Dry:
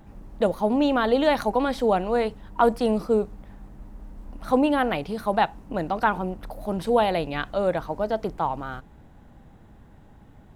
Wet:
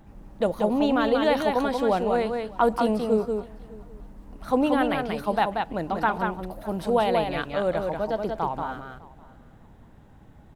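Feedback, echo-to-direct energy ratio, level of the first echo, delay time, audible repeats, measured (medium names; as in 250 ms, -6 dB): no regular repeats, -4.5 dB, -4.5 dB, 184 ms, 3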